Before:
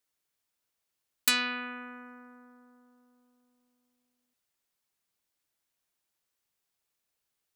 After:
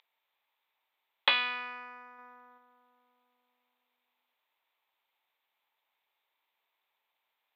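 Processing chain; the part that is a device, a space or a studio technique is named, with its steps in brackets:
toy sound module (linearly interpolated sample-rate reduction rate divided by 6×; switching amplifier with a slow clock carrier 14,000 Hz; loudspeaker in its box 640–3,800 Hz, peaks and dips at 900 Hz +8 dB, 1,500 Hz −4 dB, 2,300 Hz +5 dB, 3,600 Hz +10 dB)
0:02.18–0:02.58: comb filter 4.1 ms, depth 46%

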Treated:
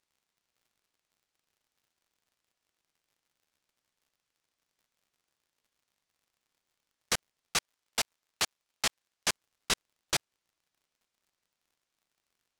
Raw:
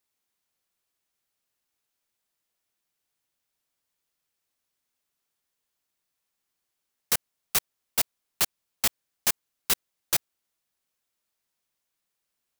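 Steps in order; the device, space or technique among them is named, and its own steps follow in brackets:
lo-fi chain (low-pass filter 6,800 Hz 12 dB per octave; tape wow and flutter; surface crackle 77 per second −60 dBFS)
0:07.56–0:09.28: low-shelf EQ 420 Hz −5.5 dB

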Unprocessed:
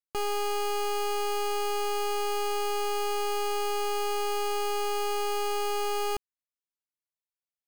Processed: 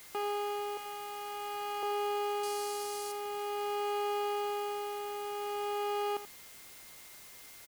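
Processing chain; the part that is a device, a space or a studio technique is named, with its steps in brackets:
0:00.77–0:01.83: high-pass filter 590 Hz 12 dB per octave
shortwave radio (band-pass filter 320–2,700 Hz; amplitude tremolo 0.49 Hz, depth 51%; steady tone 2,100 Hz −59 dBFS; white noise bed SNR 15 dB)
0:02.43–0:03.12: flat-topped bell 6,900 Hz +10.5 dB
single-tap delay 83 ms −12.5 dB
level −2.5 dB

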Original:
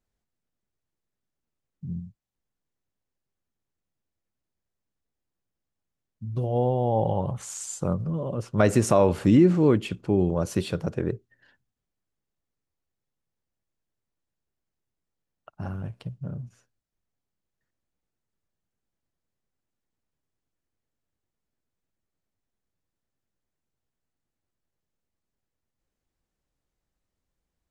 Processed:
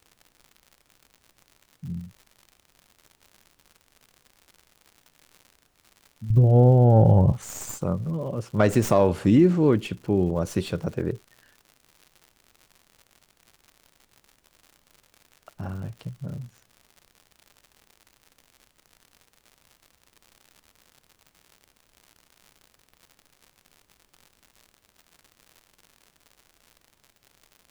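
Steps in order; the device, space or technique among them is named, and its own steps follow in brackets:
0:06.30–0:07.32: spectral tilt −4 dB per octave
record under a worn stylus (stylus tracing distortion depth 0.064 ms; surface crackle 120 per second −39 dBFS; pink noise bed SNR 41 dB)

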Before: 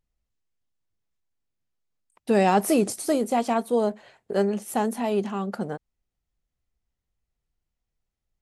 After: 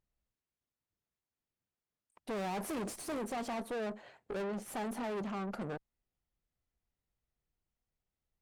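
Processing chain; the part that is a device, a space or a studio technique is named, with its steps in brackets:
tube preamp driven hard (tube saturation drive 35 dB, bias 0.55; low-shelf EQ 85 Hz −6 dB; high-shelf EQ 3,600 Hz −8 dB)

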